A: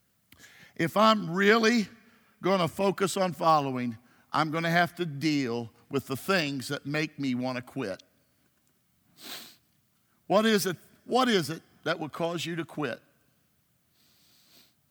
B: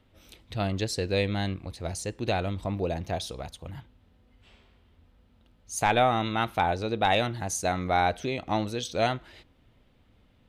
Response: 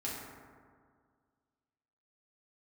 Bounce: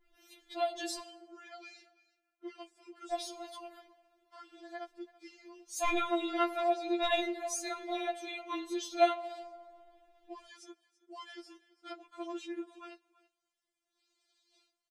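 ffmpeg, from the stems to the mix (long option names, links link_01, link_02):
-filter_complex "[0:a]lowpass=frequency=8800:width=0.5412,lowpass=frequency=8800:width=1.3066,alimiter=limit=-15.5dB:level=0:latency=1:release=66,volume=-11dB,afade=type=in:start_time=11.35:duration=0.56:silence=0.375837,asplit=2[link_01][link_02];[link_02]volume=-20.5dB[link_03];[1:a]adynamicequalizer=threshold=0.02:dfrequency=1600:dqfactor=0.7:tfrequency=1600:tqfactor=0.7:attack=5:release=100:ratio=0.375:range=1.5:mode=cutabove:tftype=highshelf,volume=-4dB,asplit=3[link_04][link_05][link_06];[link_04]atrim=end=0.99,asetpts=PTS-STARTPTS,afade=type=out:start_time=0.986:duration=0.004:curve=hsin[link_07];[link_05]atrim=start=0.99:end=3.12,asetpts=PTS-STARTPTS,volume=0[link_08];[link_06]atrim=start=3.12,asetpts=PTS-STARTPTS,afade=type=in:duration=0.004:curve=hsin[link_09];[link_07][link_08][link_09]concat=n=3:v=0:a=1,asplit=2[link_10][link_11];[link_11]volume=-13dB[link_12];[2:a]atrim=start_sample=2205[link_13];[link_12][link_13]afir=irnorm=-1:irlink=0[link_14];[link_03]aecho=0:1:333:1[link_15];[link_01][link_10][link_14][link_15]amix=inputs=4:normalize=0,afftfilt=real='re*4*eq(mod(b,16),0)':imag='im*4*eq(mod(b,16),0)':win_size=2048:overlap=0.75"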